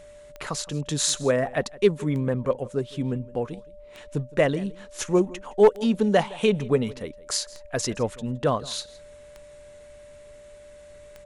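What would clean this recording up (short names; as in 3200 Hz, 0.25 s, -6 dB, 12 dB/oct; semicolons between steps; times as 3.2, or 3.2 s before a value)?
clip repair -8.5 dBFS; de-click; notch 590 Hz, Q 30; inverse comb 0.165 s -21 dB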